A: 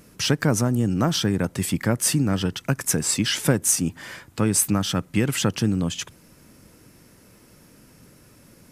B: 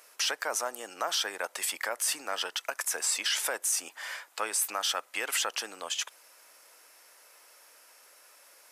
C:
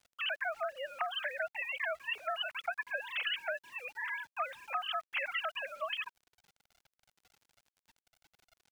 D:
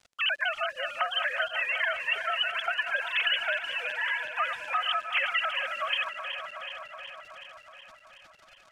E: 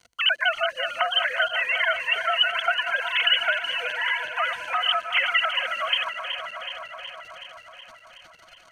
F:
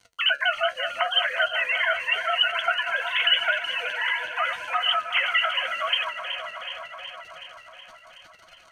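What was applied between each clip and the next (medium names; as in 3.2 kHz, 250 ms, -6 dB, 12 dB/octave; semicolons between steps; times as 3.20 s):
high-pass 630 Hz 24 dB/octave; peak limiter -18.5 dBFS, peak gain reduction 11 dB
formants replaced by sine waves; compression 10:1, threshold -32 dBFS, peak gain reduction 10 dB; small samples zeroed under -55 dBFS
backward echo that repeats 186 ms, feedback 81%, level -9 dB; dynamic bell 650 Hz, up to -7 dB, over -50 dBFS, Q 1.3; low-pass 8.9 kHz 12 dB/octave; trim +8.5 dB
rippled EQ curve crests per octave 1.9, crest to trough 8 dB; trim +4.5 dB
flange 0.84 Hz, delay 9.5 ms, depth 7.6 ms, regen +49%; trim +3.5 dB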